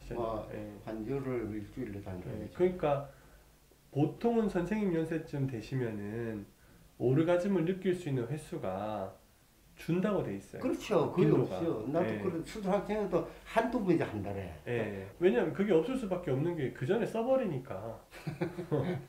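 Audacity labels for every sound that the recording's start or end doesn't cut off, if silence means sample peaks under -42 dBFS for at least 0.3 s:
3.940000	6.430000	sound
7.000000	9.110000	sound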